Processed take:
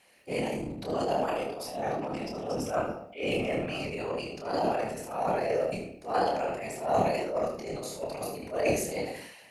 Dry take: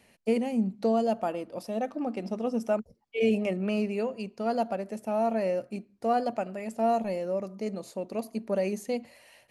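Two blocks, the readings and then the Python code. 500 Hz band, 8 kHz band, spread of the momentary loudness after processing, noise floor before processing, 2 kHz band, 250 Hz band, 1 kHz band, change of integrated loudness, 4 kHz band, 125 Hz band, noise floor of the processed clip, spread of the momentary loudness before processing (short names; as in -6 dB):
-1.0 dB, n/a, 8 LU, -64 dBFS, +4.0 dB, -6.0 dB, +1.0 dB, -1.5 dB, +5.0 dB, +0.5 dB, -51 dBFS, 8 LU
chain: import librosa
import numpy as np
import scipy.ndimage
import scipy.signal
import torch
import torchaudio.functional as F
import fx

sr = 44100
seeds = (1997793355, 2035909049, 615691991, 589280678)

y = fx.highpass(x, sr, hz=700.0, slope=6)
y = fx.room_shoebox(y, sr, seeds[0], volume_m3=110.0, walls='mixed', distance_m=0.5)
y = fx.whisperise(y, sr, seeds[1])
y = fx.transient(y, sr, attack_db=-11, sustain_db=9)
y = fx.room_early_taps(y, sr, ms=(27, 76), db=(-4.0, -9.5))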